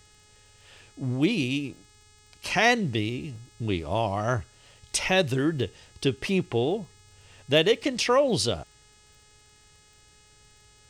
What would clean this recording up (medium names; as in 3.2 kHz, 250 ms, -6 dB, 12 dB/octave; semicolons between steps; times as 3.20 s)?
de-click; de-hum 421.7 Hz, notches 21